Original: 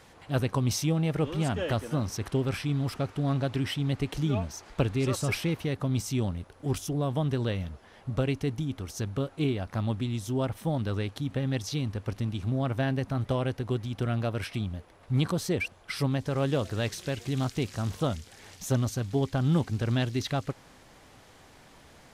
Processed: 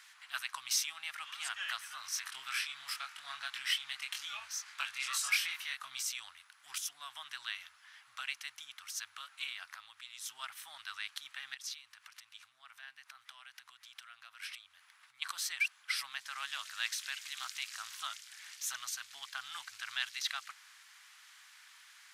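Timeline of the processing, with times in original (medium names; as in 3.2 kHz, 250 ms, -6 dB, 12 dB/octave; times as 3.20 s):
2.02–6.03 s: doubling 23 ms -3 dB
9.70–10.22 s: compression 3:1, threshold -34 dBFS
11.54–15.22 s: compression 5:1, threshold -38 dBFS
whole clip: inverse Chebyshev high-pass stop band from 510 Hz, stop band 50 dB; trim +1 dB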